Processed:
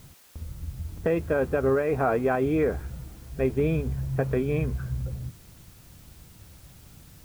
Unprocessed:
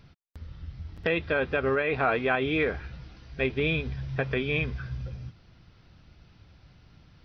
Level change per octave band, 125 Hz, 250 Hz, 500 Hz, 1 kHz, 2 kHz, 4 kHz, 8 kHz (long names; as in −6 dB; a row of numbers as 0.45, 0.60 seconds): +4.5 dB, +4.0 dB, +3.5 dB, 0.0 dB, −7.5 dB, below −10 dB, can't be measured